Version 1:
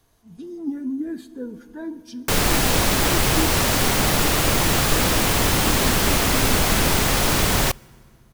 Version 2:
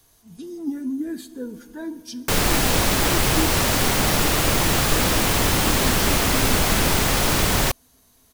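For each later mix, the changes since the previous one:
speech: add high-shelf EQ 3,600 Hz +11.5 dB
background: send off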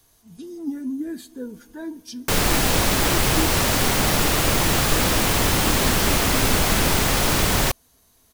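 speech: send −7.0 dB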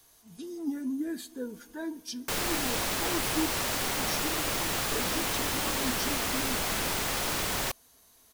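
background −9.0 dB
master: add low-shelf EQ 260 Hz −9 dB

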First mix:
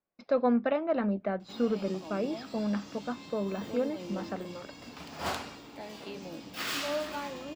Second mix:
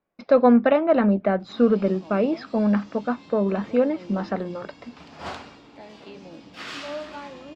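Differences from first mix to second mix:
speech +10.5 dB
master: add high-frequency loss of the air 93 metres

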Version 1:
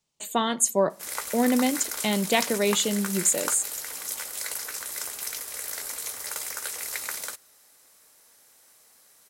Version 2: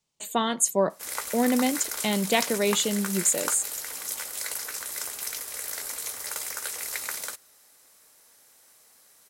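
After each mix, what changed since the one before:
speech: send off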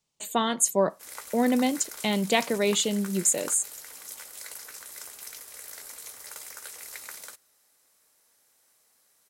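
background −8.5 dB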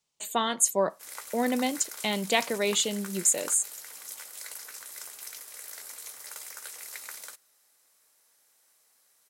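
master: add low-shelf EQ 370 Hz −7.5 dB

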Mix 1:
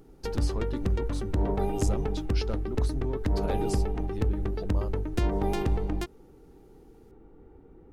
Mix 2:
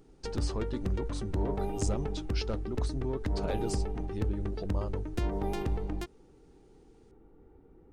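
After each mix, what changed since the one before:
speech: add linear-phase brick-wall low-pass 9,800 Hz
background −5.0 dB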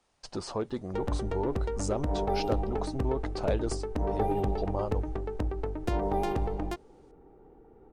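background: entry +0.70 s
master: add parametric band 720 Hz +9 dB 1.6 octaves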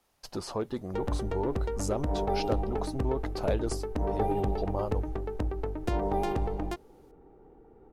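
speech: remove linear-phase brick-wall low-pass 9,800 Hz

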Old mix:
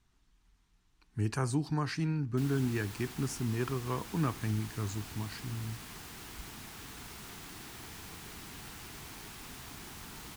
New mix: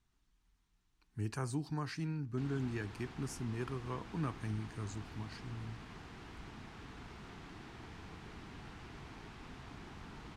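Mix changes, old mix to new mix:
speech −6.5 dB
background: add head-to-tape spacing loss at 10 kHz 25 dB

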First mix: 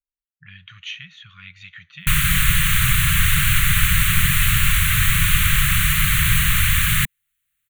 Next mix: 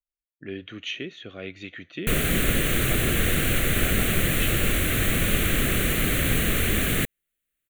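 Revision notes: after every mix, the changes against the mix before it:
background −7.0 dB
master: remove linear-phase brick-wall band-stop 180–1,000 Hz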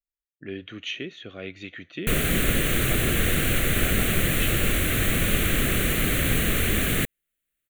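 nothing changed

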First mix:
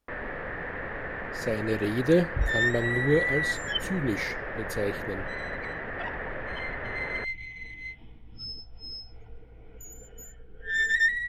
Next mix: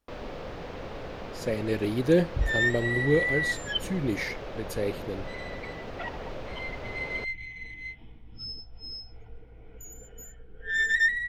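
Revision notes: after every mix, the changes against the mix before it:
first sound: remove low-pass with resonance 1,800 Hz, resonance Q 8.3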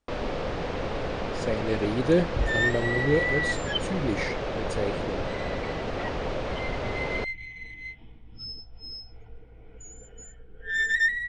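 first sound +8.0 dB
master: add linear-phase brick-wall low-pass 9,700 Hz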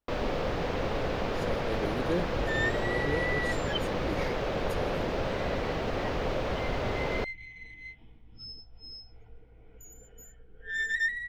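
speech −9.0 dB
second sound −5.5 dB
master: remove linear-phase brick-wall low-pass 9,700 Hz

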